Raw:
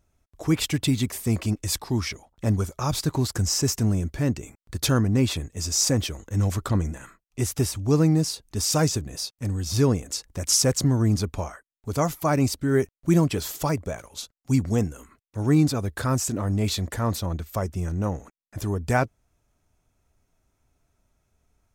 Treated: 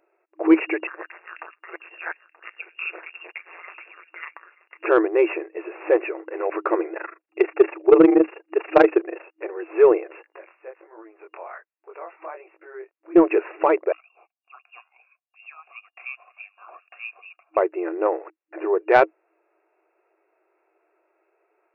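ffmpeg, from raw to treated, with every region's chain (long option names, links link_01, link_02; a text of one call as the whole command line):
ffmpeg -i in.wav -filter_complex "[0:a]asettb=1/sr,asplit=3[link_01][link_02][link_03];[link_01]atrim=end=0.874[link_04];[link_02]atrim=start=0.87:end=4.86,asetpts=PTS-STARTPTS,afade=type=in:duration=0.004:curve=qsin,afade=type=out:start_time=3.986:duration=0.004:curve=qsin,tremolo=f=170:d=0.889,aecho=1:1:929:0.126,atrim=end_sample=175959,lowpass=frequency=3200:width_type=q:width=0.5098,lowpass=frequency=3200:width_type=q:width=0.6013,lowpass=frequency=3200:width_type=q:width=0.9,lowpass=frequency=3200:width_type=q:width=2.563,afreqshift=-3800[link_05];[link_03]atrim=start=4.856[link_06];[link_04][link_05]acrossfade=duration=0.004:curve1=hsin:curve2=qsin[link_07];[link_07][link_06]acrossfade=duration=0.004:curve1=qsin:curve2=hsin,asettb=1/sr,asplit=3[link_08][link_09][link_10];[link_08]atrim=end=6.934[link_11];[link_09]atrim=start=6.93:end=9.23,asetpts=PTS-STARTPTS,afade=type=in:duration=0.004:curve=qsin,afade=type=out:start_time=2.296:duration=0.004:curve=qsin,bandreject=frequency=990:width=23,tremolo=f=25:d=0.919,acontrast=72[link_12];[link_10]atrim=start=9.226[link_13];[link_11][link_12]acrossfade=duration=0.004:curve1=hsin:curve2=qsin[link_14];[link_14][link_13]acrossfade=duration=0.004:curve1=qsin:curve2=hsin,asettb=1/sr,asplit=3[link_15][link_16][link_17];[link_15]atrim=end=10.234[link_18];[link_16]atrim=start=10.23:end=13.16,asetpts=PTS-STARTPTS,afade=type=in:duration=0.004:curve=qsin,afade=type=out:start_time=2.926:duration=0.004:curve=qsin,acompressor=threshold=-33dB:ratio=20:attack=3.2:release=140:knee=1:detection=peak,flanger=delay=18:depth=5.6:speed=1.3,highpass=600[link_19];[link_17]atrim=start=13.156[link_20];[link_18][link_19]acrossfade=duration=0.004:curve1=hsin:curve2=qsin[link_21];[link_21][link_20]acrossfade=duration=0.004:curve1=qsin:curve2=hsin,asettb=1/sr,asplit=3[link_22][link_23][link_24];[link_22]atrim=end=13.924[link_25];[link_23]atrim=start=13.92:end=17.57,asetpts=PTS-STARTPTS,afade=type=in:duration=0.004:curve=qsin,afade=type=out:start_time=3.646:duration=0.004:curve=qsin,lowpass=frequency=3100:width_type=q:width=0.5098,lowpass=frequency=3100:width_type=q:width=0.6013,lowpass=frequency=3100:width_type=q:width=0.9,lowpass=frequency=3100:width_type=q:width=2.563,afreqshift=-3600,asplit=3[link_26][link_27][link_28];[link_26]bandpass=frequency=730:width_type=q:width=8,volume=0dB[link_29];[link_27]bandpass=frequency=1090:width_type=q:width=8,volume=-6dB[link_30];[link_28]bandpass=frequency=2440:width_type=q:width=8,volume=-9dB[link_31];[link_29][link_30][link_31]amix=inputs=3:normalize=0,equalizer=frequency=300:width_type=o:width=1.4:gain=-7.5[link_32];[link_24]atrim=start=17.566[link_33];[link_25][link_32]acrossfade=duration=0.004:curve1=hsin:curve2=qsin[link_34];[link_34][link_33]acrossfade=duration=0.004:curve1=qsin:curve2=hsin,lowshelf=frequency=420:gain=10.5,afftfilt=real='re*between(b*sr/4096,320,2800)':imag='im*between(b*sr/4096,320,2800)':win_size=4096:overlap=0.75,acontrast=88" out.wav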